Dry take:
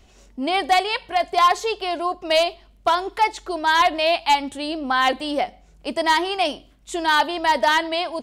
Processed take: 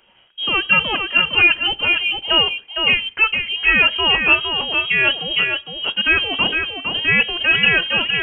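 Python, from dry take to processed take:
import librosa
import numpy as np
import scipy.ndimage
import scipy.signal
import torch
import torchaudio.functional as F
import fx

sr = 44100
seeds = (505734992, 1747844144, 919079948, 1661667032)

y = scipy.signal.sosfilt(scipy.signal.butter(4, 240.0, 'highpass', fs=sr, output='sos'), x)
y = y + 10.0 ** (-5.5 / 20.0) * np.pad(y, (int(459 * sr / 1000.0), 0))[:len(y)]
y = fx.freq_invert(y, sr, carrier_hz=3500)
y = y * 10.0 ** (2.5 / 20.0)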